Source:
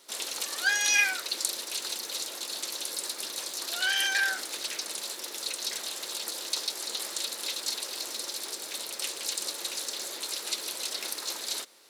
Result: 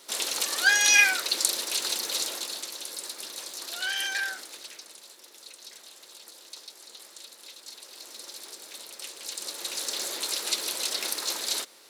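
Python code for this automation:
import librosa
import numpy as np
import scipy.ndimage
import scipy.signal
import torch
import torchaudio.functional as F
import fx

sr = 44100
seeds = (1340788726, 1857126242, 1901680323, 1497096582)

y = fx.gain(x, sr, db=fx.line((2.29, 5.0), (2.7, -3.0), (4.17, -3.0), (5.0, -13.0), (7.62, -13.0), (8.3, -6.5), (9.14, -6.5), (9.97, 4.0)))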